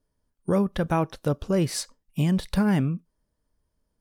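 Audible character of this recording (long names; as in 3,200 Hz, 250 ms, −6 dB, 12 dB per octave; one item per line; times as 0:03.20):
background noise floor −78 dBFS
spectral slope −7.0 dB per octave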